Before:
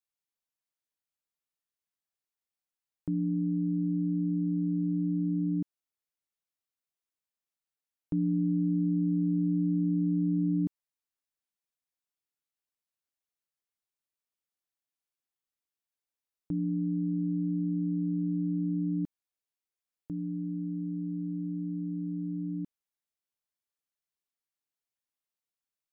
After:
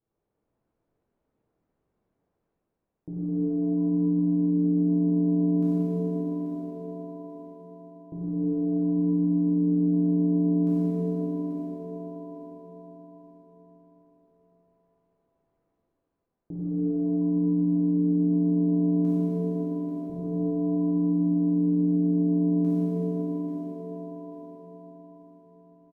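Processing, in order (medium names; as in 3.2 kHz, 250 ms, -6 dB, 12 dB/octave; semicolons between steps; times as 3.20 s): peak limiter -30.5 dBFS, peak gain reduction 9 dB; reverse; upward compressor, threshold -56 dBFS; reverse; level-controlled noise filter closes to 410 Hz, open at -37 dBFS; on a send: feedback delay 837 ms, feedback 35%, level -10.5 dB; on the sum: pitch-shifted reverb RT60 3.4 s, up +7 st, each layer -8 dB, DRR -10 dB; trim +1 dB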